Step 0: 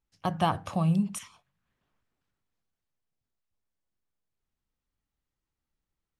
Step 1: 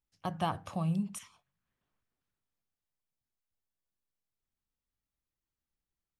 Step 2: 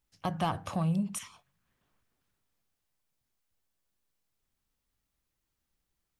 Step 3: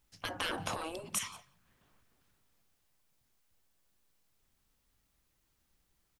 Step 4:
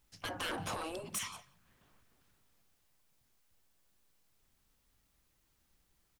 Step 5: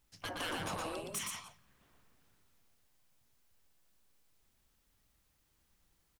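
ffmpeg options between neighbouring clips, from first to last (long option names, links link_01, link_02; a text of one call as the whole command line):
ffmpeg -i in.wav -af "highshelf=frequency=9500:gain=2.5,volume=-6.5dB" out.wav
ffmpeg -i in.wav -filter_complex "[0:a]asplit=2[link_01][link_02];[link_02]acompressor=threshold=-41dB:ratio=6,volume=1.5dB[link_03];[link_01][link_03]amix=inputs=2:normalize=0,asoftclip=type=tanh:threshold=-23dB,volume=1.5dB" out.wav
ffmpeg -i in.wav -af "afftfilt=real='re*lt(hypot(re,im),0.0501)':imag='im*lt(hypot(re,im),0.0501)':win_size=1024:overlap=0.75,aecho=1:1:176:0.0668,volume=6.5dB" out.wav
ffmpeg -i in.wav -af "asoftclip=type=tanh:threshold=-34dB,volume=1.5dB" out.wav
ffmpeg -i in.wav -af "aecho=1:1:118:0.668,volume=-1.5dB" out.wav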